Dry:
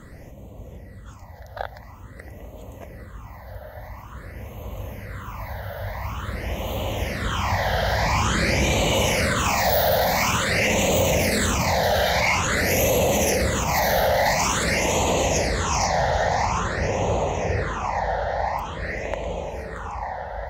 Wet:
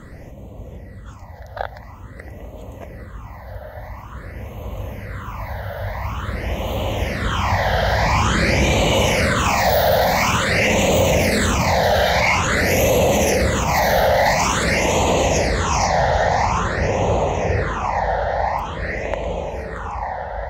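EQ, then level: high shelf 5700 Hz -6.5 dB; +4.5 dB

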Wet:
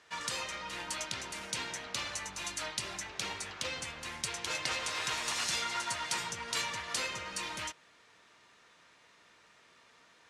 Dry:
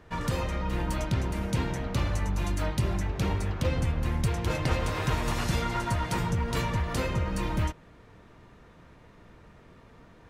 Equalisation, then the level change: weighting filter ITU-R 468; -6.0 dB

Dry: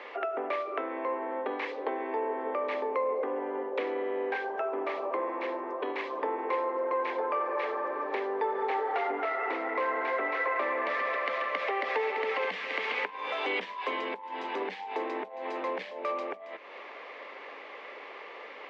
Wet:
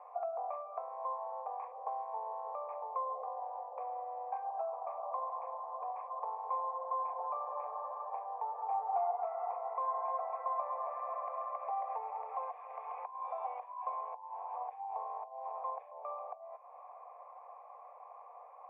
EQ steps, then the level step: vocal tract filter a; brick-wall FIR high-pass 440 Hz; air absorption 180 m; +5.0 dB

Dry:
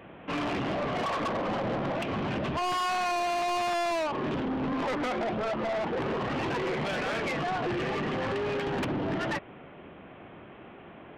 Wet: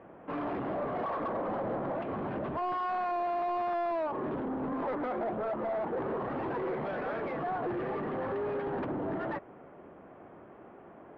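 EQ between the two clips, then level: air absorption 370 m; tone controls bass -8 dB, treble -8 dB; bell 2700 Hz -10.5 dB 1.2 oct; 0.0 dB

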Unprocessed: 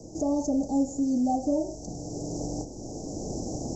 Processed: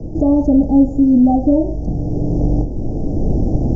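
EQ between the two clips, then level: air absorption 160 m; tilt -4 dB/oct; +7.0 dB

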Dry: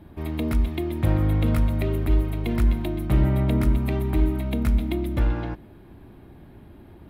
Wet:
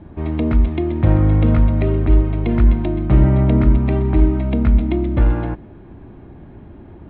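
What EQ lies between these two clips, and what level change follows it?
LPF 3700 Hz 24 dB/oct; high shelf 2500 Hz -11 dB; +7.5 dB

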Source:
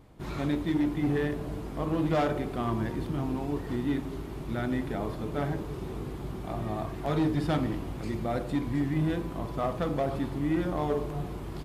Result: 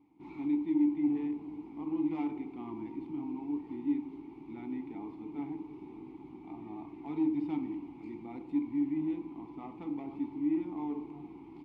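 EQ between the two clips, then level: vowel filter u; +1.0 dB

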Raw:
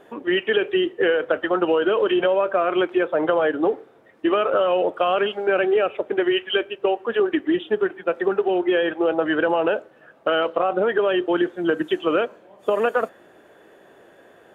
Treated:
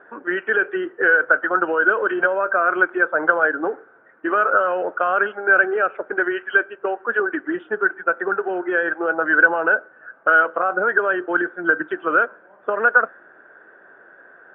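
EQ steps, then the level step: HPF 230 Hz 6 dB/oct; synth low-pass 1500 Hz, resonance Q 9.4; air absorption 130 m; -3.0 dB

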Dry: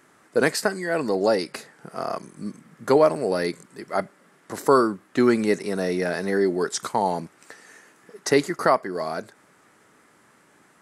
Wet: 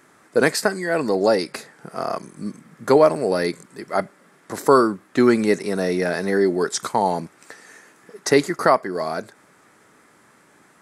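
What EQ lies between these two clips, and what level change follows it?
notch 2900 Hz, Q 23; +3.0 dB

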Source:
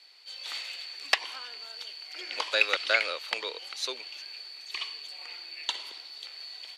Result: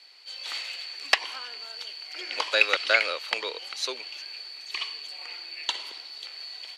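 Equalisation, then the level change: high shelf 12000 Hz -6 dB; notch 3600 Hz, Q 20; +3.5 dB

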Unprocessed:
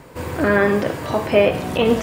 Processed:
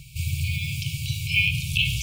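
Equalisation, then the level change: brick-wall FIR band-stop 160–2200 Hz; +5.0 dB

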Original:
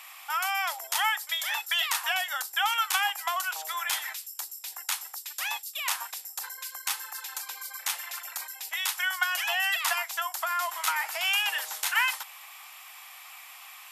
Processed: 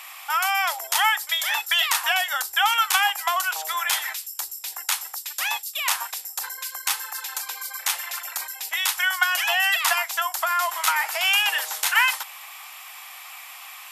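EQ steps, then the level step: low shelf 190 Hz +10 dB; +6.0 dB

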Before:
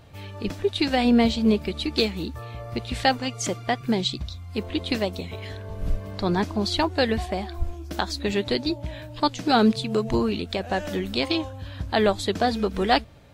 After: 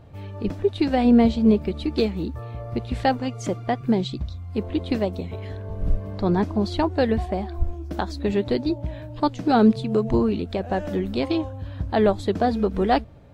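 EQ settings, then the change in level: tilt shelf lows +7 dB, about 1500 Hz; -3.5 dB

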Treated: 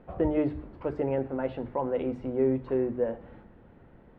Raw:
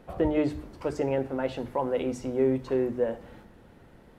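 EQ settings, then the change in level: air absorption 480 m; 0.0 dB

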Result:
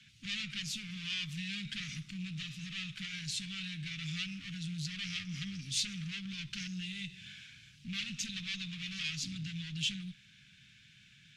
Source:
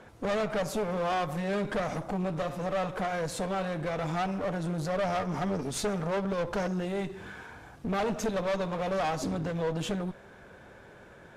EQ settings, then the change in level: elliptic band-stop 140–2700 Hz, stop band 80 dB; three-band isolator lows -23 dB, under 190 Hz, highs -20 dB, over 6600 Hz; +7.5 dB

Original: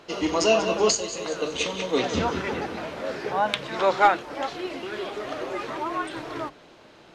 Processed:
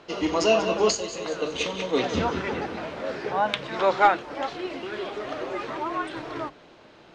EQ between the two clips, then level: air absorption 59 m; 0.0 dB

